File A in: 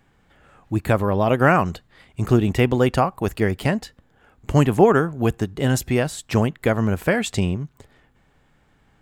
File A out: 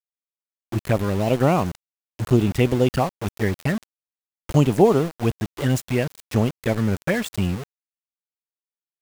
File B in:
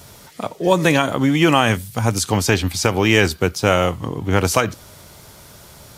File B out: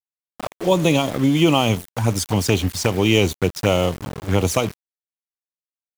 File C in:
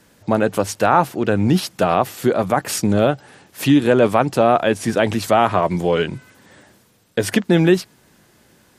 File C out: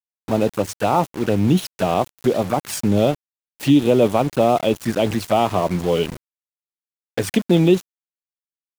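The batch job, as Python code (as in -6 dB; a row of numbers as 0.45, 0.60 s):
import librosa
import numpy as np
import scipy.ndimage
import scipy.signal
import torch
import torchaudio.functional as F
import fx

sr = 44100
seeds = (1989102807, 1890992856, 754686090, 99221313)

y = fx.env_flanger(x, sr, rest_ms=7.5, full_db=-13.5)
y = np.where(np.abs(y) >= 10.0 ** (-28.0 / 20.0), y, 0.0)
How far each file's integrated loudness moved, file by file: -1.5, -2.0, -1.5 LU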